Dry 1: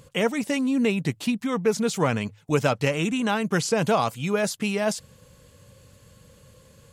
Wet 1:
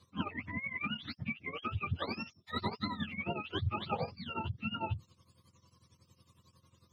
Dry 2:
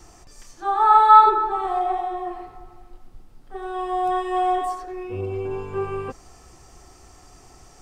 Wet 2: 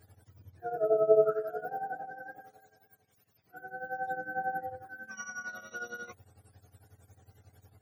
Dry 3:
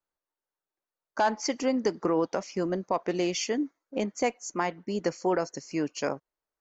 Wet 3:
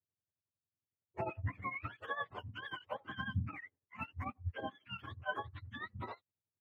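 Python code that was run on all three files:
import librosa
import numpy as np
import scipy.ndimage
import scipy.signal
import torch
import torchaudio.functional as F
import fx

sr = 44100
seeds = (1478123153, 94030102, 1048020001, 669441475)

y = fx.octave_mirror(x, sr, pivot_hz=750.0)
y = fx.tremolo_shape(y, sr, shape='triangle', hz=11.0, depth_pct=85)
y = y * 10.0 ** (-8.0 / 20.0)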